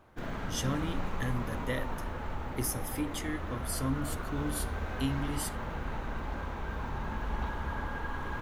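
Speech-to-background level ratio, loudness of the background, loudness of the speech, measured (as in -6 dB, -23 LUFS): 1.5 dB, -38.0 LUFS, -36.5 LUFS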